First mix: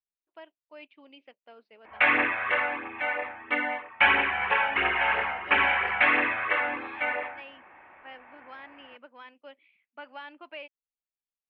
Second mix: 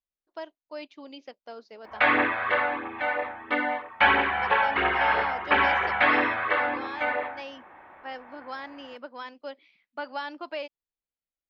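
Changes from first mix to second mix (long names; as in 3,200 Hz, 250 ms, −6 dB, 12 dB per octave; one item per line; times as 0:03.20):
background −5.5 dB
master: remove transistor ladder low-pass 3,000 Hz, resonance 55%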